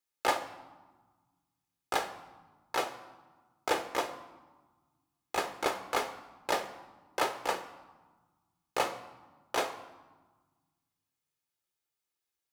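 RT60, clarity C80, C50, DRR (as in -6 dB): 1.3 s, 14.0 dB, 11.5 dB, 7.5 dB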